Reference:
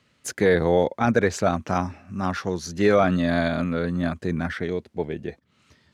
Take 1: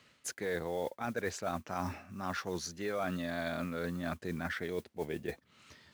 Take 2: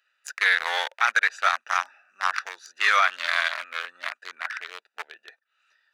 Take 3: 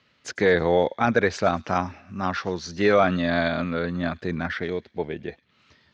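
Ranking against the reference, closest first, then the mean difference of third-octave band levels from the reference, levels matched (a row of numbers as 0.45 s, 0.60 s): 3, 1, 2; 2.5 dB, 7.5 dB, 15.5 dB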